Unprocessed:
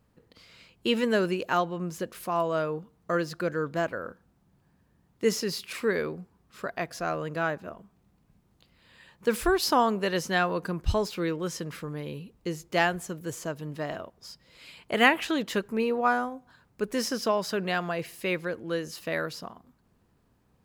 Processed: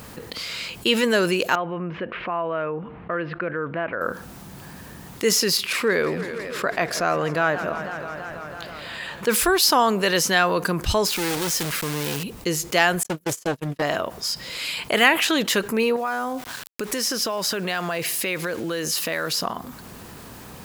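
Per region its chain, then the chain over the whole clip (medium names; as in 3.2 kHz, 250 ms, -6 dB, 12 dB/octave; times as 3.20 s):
1.55–4.01 s: steep low-pass 2.7 kHz + compression 1.5:1, threshold -56 dBFS
5.57–9.29 s: treble shelf 4.2 kHz -9.5 dB + modulated delay 164 ms, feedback 74%, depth 181 cents, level -18.5 dB
11.07–12.24 s: block-companded coder 3-bit + valve stage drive 33 dB, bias 0.55
13.03–13.82 s: gate -37 dBFS, range -56 dB + loudspeaker Doppler distortion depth 0.59 ms
15.96–19.42 s: compression, threshold -36 dBFS + small samples zeroed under -57 dBFS
whole clip: tilt EQ +2 dB/octave; level flattener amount 50%; trim +2 dB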